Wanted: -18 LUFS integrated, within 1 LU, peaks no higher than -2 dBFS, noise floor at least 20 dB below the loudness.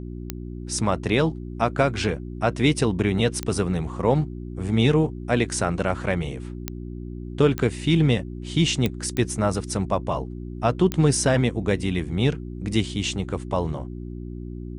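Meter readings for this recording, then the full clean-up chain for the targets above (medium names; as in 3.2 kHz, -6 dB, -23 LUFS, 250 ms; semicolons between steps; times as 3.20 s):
clicks found 7; hum 60 Hz; highest harmonic 360 Hz; hum level -31 dBFS; loudness -23.5 LUFS; peak level -6.5 dBFS; loudness target -18.0 LUFS
-> de-click; de-hum 60 Hz, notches 6; trim +5.5 dB; peak limiter -2 dBFS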